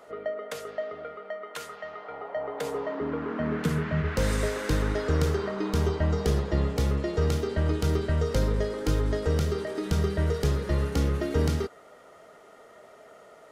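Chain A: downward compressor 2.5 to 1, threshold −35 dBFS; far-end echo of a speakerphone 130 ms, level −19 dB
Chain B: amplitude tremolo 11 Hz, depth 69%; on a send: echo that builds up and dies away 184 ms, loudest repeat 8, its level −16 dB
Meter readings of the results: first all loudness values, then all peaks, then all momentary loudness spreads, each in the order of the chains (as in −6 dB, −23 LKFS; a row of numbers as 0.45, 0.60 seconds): −36.5, −31.0 LKFS; −20.5, −12.5 dBFS; 16, 11 LU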